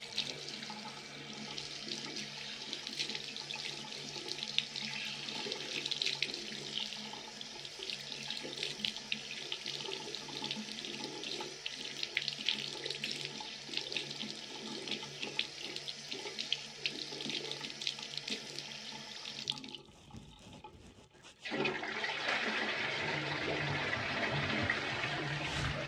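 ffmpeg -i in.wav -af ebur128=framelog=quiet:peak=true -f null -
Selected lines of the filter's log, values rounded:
Integrated loudness:
  I:         -37.9 LUFS
  Threshold: -48.2 LUFS
Loudness range:
  LRA:         5.9 LU
  Threshold: -58.3 LUFS
  LRA low:   -40.8 LUFS
  LRA high:  -34.9 LUFS
True peak:
  Peak:      -11.7 dBFS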